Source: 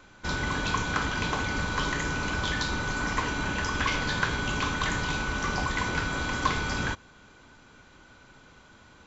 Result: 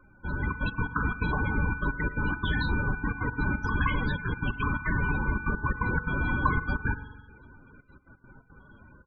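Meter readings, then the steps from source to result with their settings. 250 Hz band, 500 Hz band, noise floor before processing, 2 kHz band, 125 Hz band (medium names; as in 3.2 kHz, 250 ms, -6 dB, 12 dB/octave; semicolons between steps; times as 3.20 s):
+1.5 dB, -3.5 dB, -55 dBFS, -1.0 dB, +3.5 dB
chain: bass shelf 210 Hz +6 dB; level rider gain up to 5.5 dB; trance gate "xxxxxx.x.x.xx." 173 bpm -24 dB; delay 111 ms -18.5 dB; spring tank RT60 1.4 s, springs 43 ms, chirp 70 ms, DRR 13.5 dB; loudest bins only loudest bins 32; trim -5 dB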